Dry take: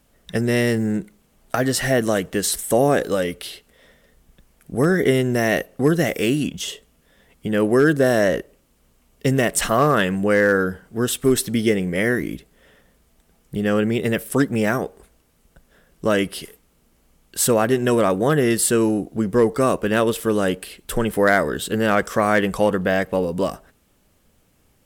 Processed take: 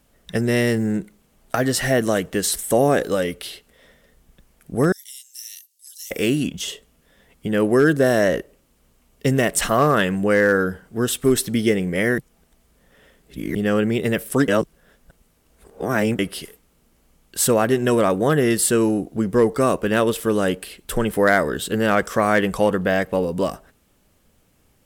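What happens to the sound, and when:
4.92–6.11 inverse Chebyshev high-pass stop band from 800 Hz, stop band 80 dB
12.18–13.55 reverse
14.48–16.19 reverse

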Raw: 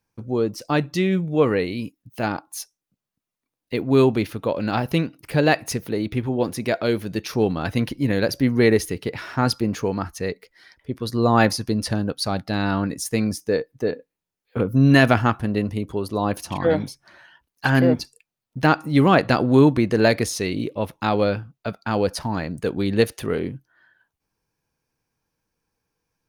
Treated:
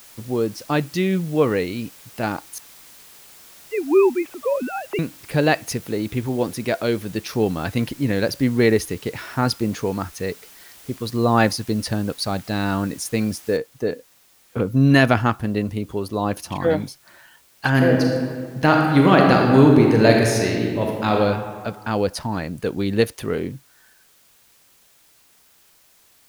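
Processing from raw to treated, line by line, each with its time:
2.58–4.99 sine-wave speech
13.57 noise floor step -46 dB -56 dB
17.71–21.15 reverb throw, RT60 1.9 s, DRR 0 dB

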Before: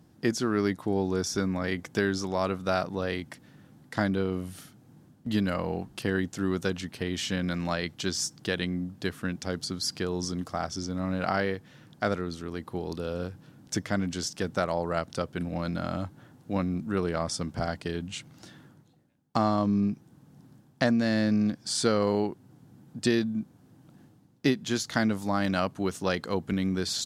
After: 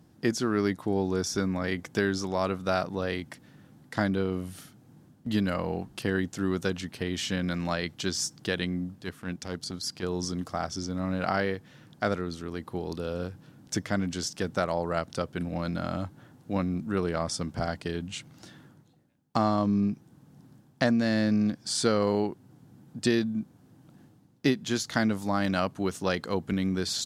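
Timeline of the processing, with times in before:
8.95–10.03 transient shaper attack -10 dB, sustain -5 dB

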